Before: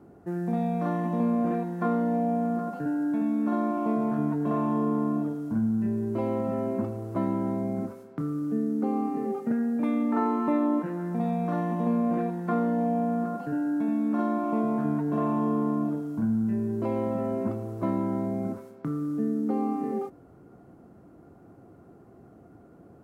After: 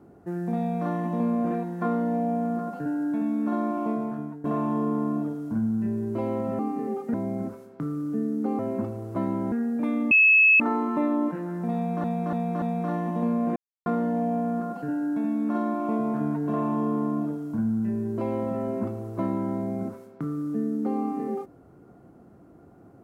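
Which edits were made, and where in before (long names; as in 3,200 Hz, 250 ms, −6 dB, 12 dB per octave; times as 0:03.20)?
0:03.82–0:04.44: fade out, to −16 dB
0:06.59–0:07.52: swap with 0:08.97–0:09.52
0:10.11: insert tone 2,590 Hz −13.5 dBFS 0.49 s
0:11.26–0:11.55: repeat, 4 plays
0:12.20–0:12.50: silence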